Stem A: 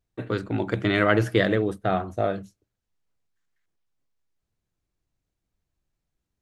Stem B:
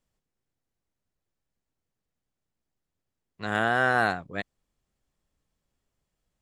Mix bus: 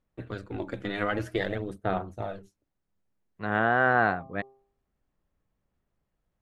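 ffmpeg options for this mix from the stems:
ffmpeg -i stem1.wav -i stem2.wav -filter_complex "[0:a]tremolo=f=200:d=0.667,aphaser=in_gain=1:out_gain=1:delay=4.2:decay=0.39:speed=0.52:type=sinusoidal,volume=-6dB[link_01];[1:a]lowpass=1900,bandreject=frequency=132.7:width_type=h:width=4,bandreject=frequency=265.4:width_type=h:width=4,bandreject=frequency=398.1:width_type=h:width=4,bandreject=frequency=530.8:width_type=h:width=4,bandreject=frequency=663.5:width_type=h:width=4,bandreject=frequency=796.2:width_type=h:width=4,bandreject=frequency=928.9:width_type=h:width=4,bandreject=frequency=1061.6:width_type=h:width=4,bandreject=frequency=1194.3:width_type=h:width=4,volume=1.5dB[link_02];[link_01][link_02]amix=inputs=2:normalize=0" out.wav

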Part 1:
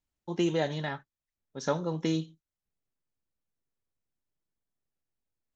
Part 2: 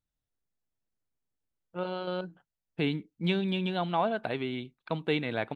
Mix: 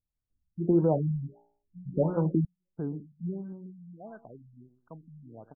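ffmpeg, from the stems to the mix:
ffmpeg -i stem1.wav -i stem2.wav -filter_complex "[0:a]lowpass=1300,bandreject=frequency=58.69:width_type=h:width=4,bandreject=frequency=117.38:width_type=h:width=4,bandreject=frequency=176.07:width_type=h:width=4,bandreject=frequency=234.76:width_type=h:width=4,bandreject=frequency=293.45:width_type=h:width=4,bandreject=frequency=352.14:width_type=h:width=4,bandreject=frequency=410.83:width_type=h:width=4,bandreject=frequency=469.52:width_type=h:width=4,bandreject=frequency=528.21:width_type=h:width=4,bandreject=frequency=586.9:width_type=h:width=4,bandreject=frequency=645.59:width_type=h:width=4,bandreject=frequency=704.28:width_type=h:width=4,bandreject=frequency=762.97:width_type=h:width=4,bandreject=frequency=821.66:width_type=h:width=4,bandreject=frequency=880.35:width_type=h:width=4,adelay=300,volume=2.5dB,asplit=3[link_01][link_02][link_03];[link_01]atrim=end=2.45,asetpts=PTS-STARTPTS,afade=type=out:start_time=2.446:duration=0.004:curve=hsin[link_04];[link_02]atrim=start=2.45:end=4.09,asetpts=PTS-STARTPTS,volume=0[link_05];[link_03]atrim=start=4.09,asetpts=PTS-STARTPTS,afade=type=in:duration=0.004:curve=hsin[link_06];[link_04][link_05][link_06]concat=n=3:v=0:a=1[link_07];[1:a]volume=-7.5dB,afade=type=out:start_time=3.18:duration=0.36:silence=0.334965,asplit=2[link_08][link_09];[link_09]volume=-15dB,aecho=0:1:120|240|360|480:1|0.22|0.0484|0.0106[link_10];[link_07][link_08][link_10]amix=inputs=3:normalize=0,lowshelf=frequency=200:gain=8.5,afftfilt=real='re*lt(b*sr/1024,200*pow(1700/200,0.5+0.5*sin(2*PI*1.5*pts/sr)))':imag='im*lt(b*sr/1024,200*pow(1700/200,0.5+0.5*sin(2*PI*1.5*pts/sr)))':win_size=1024:overlap=0.75" out.wav

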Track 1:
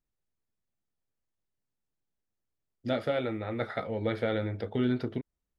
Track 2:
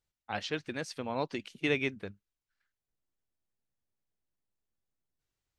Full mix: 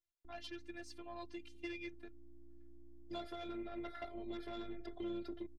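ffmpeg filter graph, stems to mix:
ffmpeg -i stem1.wav -i stem2.wav -filter_complex "[0:a]aeval=exprs='val(0)+0.00501*(sin(2*PI*60*n/s)+sin(2*PI*2*60*n/s)/2+sin(2*PI*3*60*n/s)/3+sin(2*PI*4*60*n/s)/4+sin(2*PI*5*60*n/s)/5)':channel_layout=same,adelay=250,volume=-1dB[link_01];[1:a]volume=-6dB[link_02];[link_01][link_02]amix=inputs=2:normalize=0,acrossover=split=180|3000[link_03][link_04][link_05];[link_04]acompressor=threshold=-37dB:ratio=3[link_06];[link_03][link_06][link_05]amix=inputs=3:normalize=0,afftfilt=real='hypot(re,im)*cos(PI*b)':imag='0':win_size=512:overlap=0.75,aeval=exprs='(tanh(39.8*val(0)+0.35)-tanh(0.35))/39.8':channel_layout=same" out.wav

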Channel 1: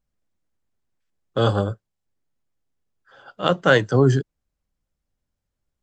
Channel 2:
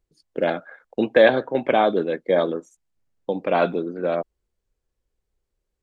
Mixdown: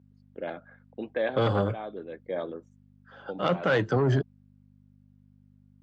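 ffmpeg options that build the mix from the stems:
ffmpeg -i stem1.wav -i stem2.wav -filter_complex "[0:a]asoftclip=type=tanh:threshold=-13dB,aeval=exprs='val(0)+0.00282*(sin(2*PI*50*n/s)+sin(2*PI*2*50*n/s)/2+sin(2*PI*3*50*n/s)/3+sin(2*PI*4*50*n/s)/4+sin(2*PI*5*50*n/s)/5)':channel_layout=same,volume=0dB,asplit=2[link_01][link_02];[1:a]dynaudnorm=framelen=330:gausssize=3:maxgain=5.5dB,volume=-15.5dB[link_03];[link_02]apad=whole_len=257102[link_04];[link_03][link_04]sidechaincompress=threshold=-26dB:ratio=5:attack=16:release=1140[link_05];[link_01][link_05]amix=inputs=2:normalize=0,highpass=110,lowpass=3500,alimiter=limit=-15.5dB:level=0:latency=1:release=20" out.wav

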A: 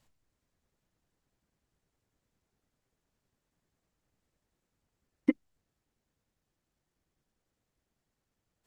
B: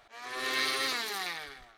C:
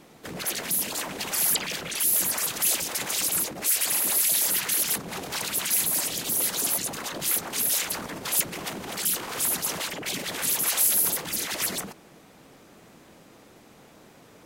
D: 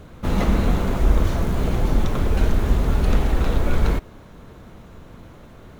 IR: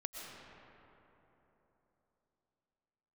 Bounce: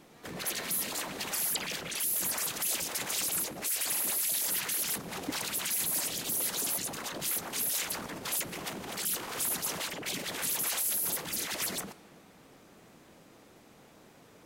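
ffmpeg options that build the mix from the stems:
-filter_complex "[0:a]volume=-12dB[link_01];[1:a]volume=-15.5dB[link_02];[2:a]volume=-5.5dB,asplit=2[link_03][link_04];[link_04]volume=-16.5dB[link_05];[4:a]atrim=start_sample=2205[link_06];[link_05][link_06]afir=irnorm=-1:irlink=0[link_07];[link_01][link_02][link_03][link_07]amix=inputs=4:normalize=0,alimiter=limit=-21.5dB:level=0:latency=1:release=16"

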